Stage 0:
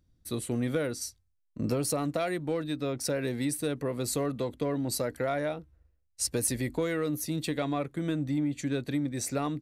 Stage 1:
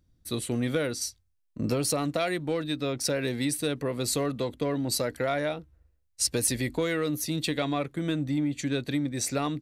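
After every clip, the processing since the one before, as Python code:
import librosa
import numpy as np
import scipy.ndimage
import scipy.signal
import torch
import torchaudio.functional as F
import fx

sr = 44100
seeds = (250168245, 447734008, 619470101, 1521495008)

y = fx.dynamic_eq(x, sr, hz=3600.0, q=0.74, threshold_db=-49.0, ratio=4.0, max_db=6)
y = y * 10.0 ** (1.5 / 20.0)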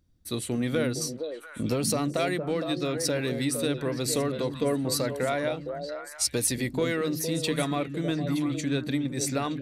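y = fx.hum_notches(x, sr, base_hz=50, count=3)
y = fx.echo_stepped(y, sr, ms=230, hz=180.0, octaves=1.4, feedback_pct=70, wet_db=-1.5)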